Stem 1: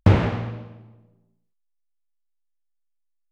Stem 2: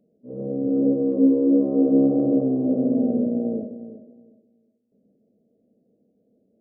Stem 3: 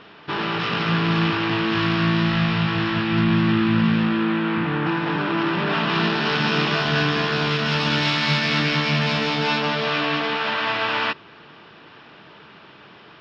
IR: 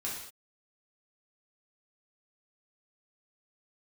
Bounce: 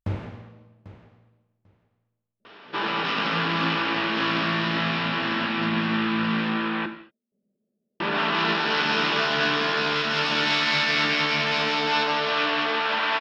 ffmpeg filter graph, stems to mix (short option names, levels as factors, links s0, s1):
-filter_complex "[0:a]volume=0.141,asplit=3[s0][s1][s2];[s1]volume=0.376[s3];[s2]volume=0.224[s4];[1:a]aecho=1:1:5.2:0.65,adelay=2400,volume=0.178[s5];[2:a]highpass=280,adelay=2450,volume=0.668,asplit=3[s6][s7][s8];[s6]atrim=end=6.86,asetpts=PTS-STARTPTS,afade=t=out:st=6.856:d=0.004:c=hsin[s9];[s7]atrim=start=6.86:end=8,asetpts=PTS-STARTPTS,volume=0[s10];[s8]atrim=start=8,asetpts=PTS-STARTPTS,afade=t=in:d=0.004:c=hsin[s11];[s9][s10][s11]concat=n=3:v=0:a=1,asplit=2[s12][s13];[s13]volume=0.447[s14];[3:a]atrim=start_sample=2205[s15];[s3][s14]amix=inputs=2:normalize=0[s16];[s16][s15]afir=irnorm=-1:irlink=0[s17];[s4]aecho=0:1:794|1588|2382:1|0.16|0.0256[s18];[s0][s5][s12][s17][s18]amix=inputs=5:normalize=0"